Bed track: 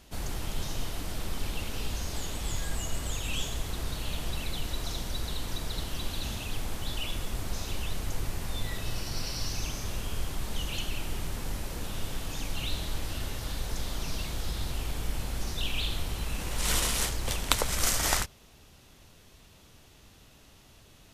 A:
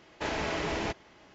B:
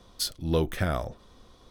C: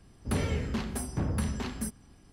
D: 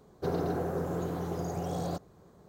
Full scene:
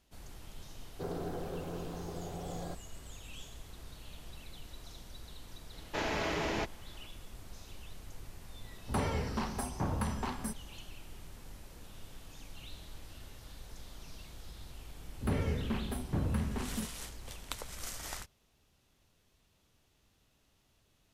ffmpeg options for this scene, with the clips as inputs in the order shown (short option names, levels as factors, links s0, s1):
-filter_complex "[3:a]asplit=2[s0][s1];[0:a]volume=0.168[s2];[s0]equalizer=f=910:t=o:w=1.1:g=11.5[s3];[s1]equalizer=f=6600:w=0.78:g=-14[s4];[4:a]atrim=end=2.48,asetpts=PTS-STARTPTS,volume=0.398,afade=t=in:d=0.004:c=hsin,afade=t=out:st=2.476:d=0.004:c=hsin,adelay=770[s5];[1:a]atrim=end=1.34,asetpts=PTS-STARTPTS,volume=0.794,afade=t=in:d=0.004:c=hsin,afade=t=out:st=1.336:d=0.004:c=hsin,adelay=252693S[s6];[s3]atrim=end=2.32,asetpts=PTS-STARTPTS,volume=0.562,afade=t=in:d=0.004:c=hsin,afade=t=out:st=2.316:d=0.004:c=hsin,adelay=8630[s7];[s4]atrim=end=2.32,asetpts=PTS-STARTPTS,volume=0.75,afade=t=in:d=0.004:c=hsin,afade=t=out:st=2.316:d=0.004:c=hsin,adelay=14960[s8];[s2][s5][s6][s7][s8]amix=inputs=5:normalize=0"